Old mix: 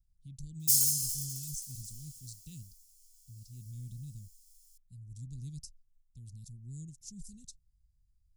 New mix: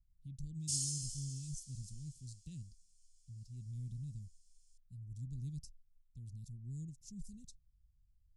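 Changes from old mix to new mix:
background: add Butterworth low-pass 9,500 Hz 48 dB per octave
master: add high-shelf EQ 2,600 Hz −9.5 dB

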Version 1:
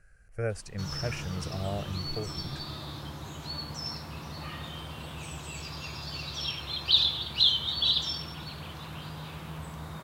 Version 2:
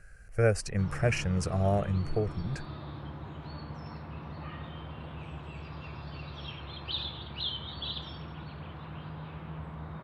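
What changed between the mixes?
speech +7.0 dB
background: add high-frequency loss of the air 490 metres

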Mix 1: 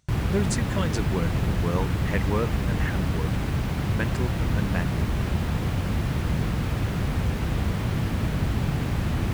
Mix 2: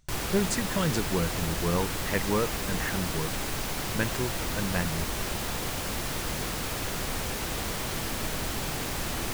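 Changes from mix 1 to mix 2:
background: add bass and treble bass −15 dB, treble +12 dB
master: remove high-pass filter 58 Hz

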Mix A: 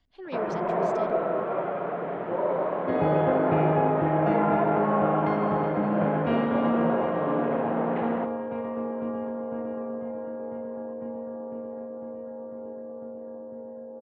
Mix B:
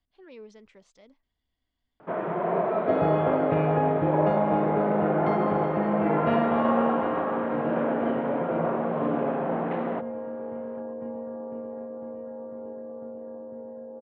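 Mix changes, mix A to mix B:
speech −10.0 dB
first sound: entry +1.75 s

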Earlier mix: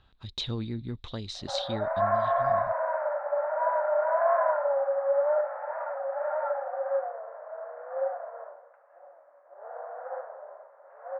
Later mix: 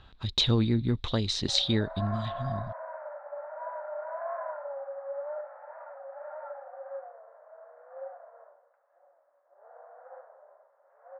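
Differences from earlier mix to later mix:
speech +8.5 dB
background −11.5 dB

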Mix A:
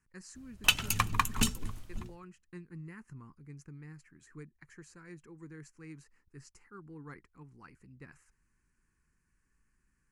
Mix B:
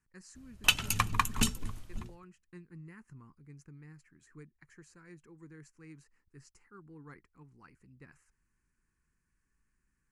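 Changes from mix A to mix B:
speech −3.5 dB
background: add linear-phase brick-wall low-pass 14,000 Hz

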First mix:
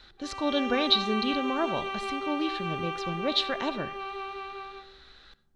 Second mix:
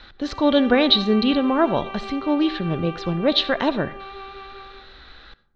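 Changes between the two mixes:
speech +11.0 dB
master: add high-frequency loss of the air 180 metres

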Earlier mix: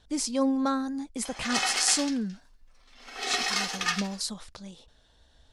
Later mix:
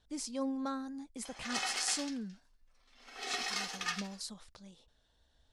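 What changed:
speech −10.5 dB
background −8.5 dB

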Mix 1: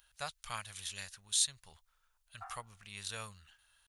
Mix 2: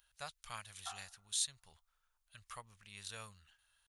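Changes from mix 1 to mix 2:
speech −5.5 dB
background: entry −1.55 s

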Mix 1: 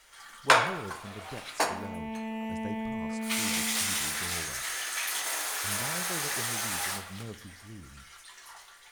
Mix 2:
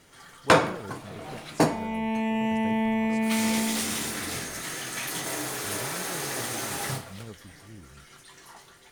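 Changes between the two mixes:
first sound: remove high-pass filter 880 Hz 12 dB per octave
second sound +9.0 dB
reverb: off

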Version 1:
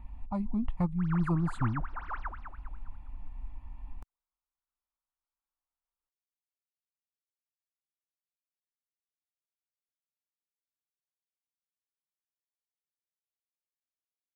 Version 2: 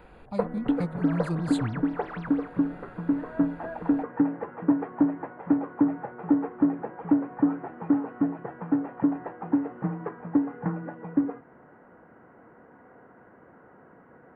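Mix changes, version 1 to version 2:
speech: add spectral tilt +3 dB per octave
first sound: unmuted
master: add octave-band graphic EQ 125/250/500/1,000/2,000/4,000 Hz +9/+3/+9/−10/+5/+9 dB

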